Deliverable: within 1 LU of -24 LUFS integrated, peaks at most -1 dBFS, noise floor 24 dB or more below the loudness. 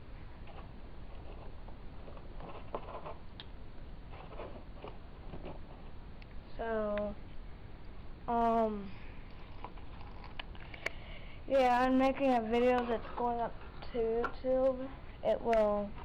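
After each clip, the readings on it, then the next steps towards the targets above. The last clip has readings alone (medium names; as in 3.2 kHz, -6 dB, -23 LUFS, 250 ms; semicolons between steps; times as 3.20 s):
clipped samples 0.6%; clipping level -23.5 dBFS; noise floor -51 dBFS; noise floor target -58 dBFS; loudness -33.5 LUFS; peak level -23.5 dBFS; loudness target -24.0 LUFS
-> clip repair -23.5 dBFS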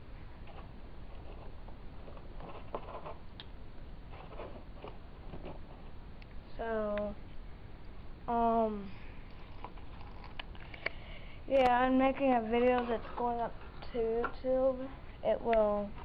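clipped samples 0.0%; noise floor -51 dBFS; noise floor target -57 dBFS
-> noise print and reduce 6 dB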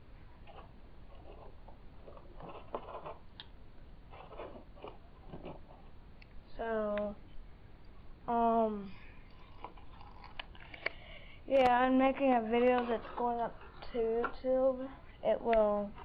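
noise floor -56 dBFS; noise floor target -57 dBFS
-> noise print and reduce 6 dB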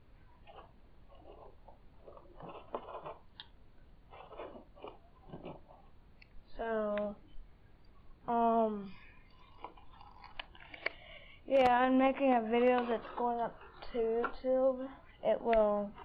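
noise floor -61 dBFS; loudness -33.0 LUFS; peak level -14.5 dBFS; loudness target -24.0 LUFS
-> trim +9 dB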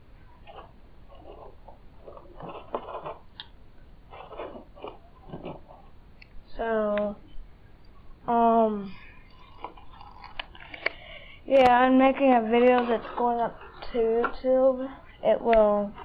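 loudness -24.0 LUFS; peak level -5.5 dBFS; noise floor -52 dBFS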